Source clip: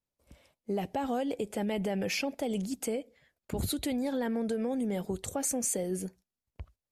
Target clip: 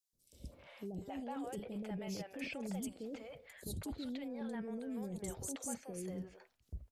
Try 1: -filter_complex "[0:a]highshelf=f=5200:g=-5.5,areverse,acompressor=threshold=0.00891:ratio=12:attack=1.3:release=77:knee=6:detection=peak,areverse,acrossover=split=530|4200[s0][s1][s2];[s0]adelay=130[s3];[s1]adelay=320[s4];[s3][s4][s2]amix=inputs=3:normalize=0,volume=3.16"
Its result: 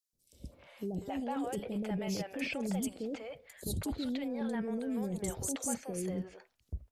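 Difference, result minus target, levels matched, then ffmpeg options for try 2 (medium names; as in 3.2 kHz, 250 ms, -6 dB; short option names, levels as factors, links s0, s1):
compression: peak gain reduction -7 dB
-filter_complex "[0:a]highshelf=f=5200:g=-5.5,areverse,acompressor=threshold=0.00376:ratio=12:attack=1.3:release=77:knee=6:detection=peak,areverse,acrossover=split=530|4200[s0][s1][s2];[s0]adelay=130[s3];[s1]adelay=320[s4];[s3][s4][s2]amix=inputs=3:normalize=0,volume=3.16"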